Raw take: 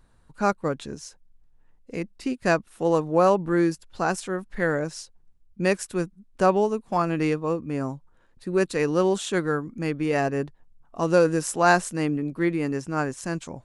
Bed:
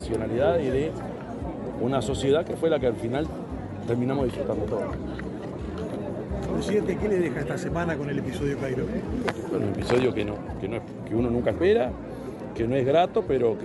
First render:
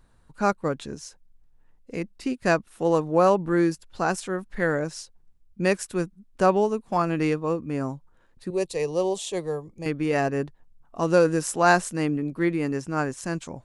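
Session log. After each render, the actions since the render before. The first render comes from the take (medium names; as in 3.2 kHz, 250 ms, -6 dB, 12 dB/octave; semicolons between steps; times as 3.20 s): 8.50–9.86 s: static phaser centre 600 Hz, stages 4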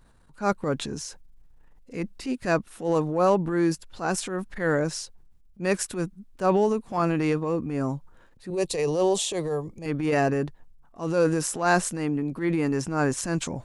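gain riding 2 s; transient shaper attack -9 dB, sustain +5 dB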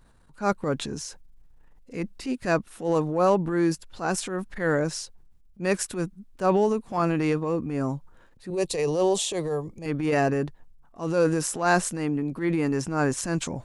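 no audible change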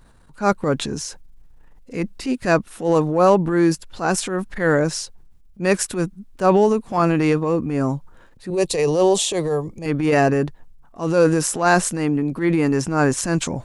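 trim +6.5 dB; peak limiter -3 dBFS, peak gain reduction 2 dB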